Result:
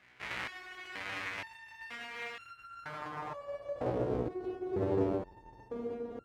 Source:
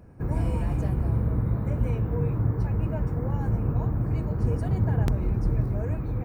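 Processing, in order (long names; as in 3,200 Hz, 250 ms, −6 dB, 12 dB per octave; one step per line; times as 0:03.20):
each half-wave held at its own peak
band-pass filter sweep 2,100 Hz → 410 Hz, 0:02.43–0:04.13
step-sequenced resonator 2.1 Hz 62–1,400 Hz
level +8.5 dB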